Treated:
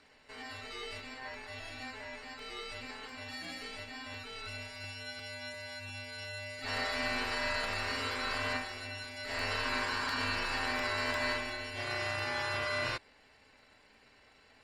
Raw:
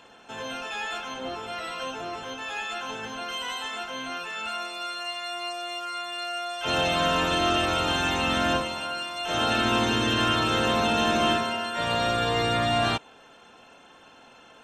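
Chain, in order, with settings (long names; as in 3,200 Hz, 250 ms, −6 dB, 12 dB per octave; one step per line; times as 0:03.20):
ring modulation 1,300 Hz
regular buffer underruns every 0.35 s, samples 64, repeat, from 0:00.99
level −7.5 dB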